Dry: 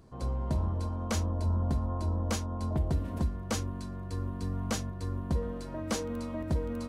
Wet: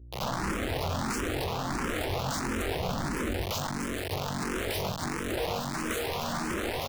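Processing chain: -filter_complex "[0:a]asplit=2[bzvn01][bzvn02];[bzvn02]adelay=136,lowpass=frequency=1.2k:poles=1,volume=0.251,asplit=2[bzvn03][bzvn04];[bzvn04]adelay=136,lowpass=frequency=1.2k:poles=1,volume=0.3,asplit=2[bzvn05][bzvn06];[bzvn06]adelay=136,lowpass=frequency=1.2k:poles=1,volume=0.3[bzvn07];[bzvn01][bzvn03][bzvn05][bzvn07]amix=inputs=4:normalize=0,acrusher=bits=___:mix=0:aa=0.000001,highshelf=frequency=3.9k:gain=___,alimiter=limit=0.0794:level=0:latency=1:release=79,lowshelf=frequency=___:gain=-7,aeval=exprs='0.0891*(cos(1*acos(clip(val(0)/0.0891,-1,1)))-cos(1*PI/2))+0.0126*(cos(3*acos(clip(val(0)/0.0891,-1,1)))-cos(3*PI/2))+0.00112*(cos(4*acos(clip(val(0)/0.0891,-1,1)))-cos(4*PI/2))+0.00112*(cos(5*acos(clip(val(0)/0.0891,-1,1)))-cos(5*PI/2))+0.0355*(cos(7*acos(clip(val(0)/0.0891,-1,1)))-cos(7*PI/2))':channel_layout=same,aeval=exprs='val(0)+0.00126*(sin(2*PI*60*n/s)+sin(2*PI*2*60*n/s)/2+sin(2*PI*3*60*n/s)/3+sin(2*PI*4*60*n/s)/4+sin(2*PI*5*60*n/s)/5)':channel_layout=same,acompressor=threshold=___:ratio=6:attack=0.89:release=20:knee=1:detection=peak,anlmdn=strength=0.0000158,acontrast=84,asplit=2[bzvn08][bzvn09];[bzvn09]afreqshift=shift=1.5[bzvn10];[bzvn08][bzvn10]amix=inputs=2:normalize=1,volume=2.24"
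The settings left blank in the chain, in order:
5, -8, 78, 0.01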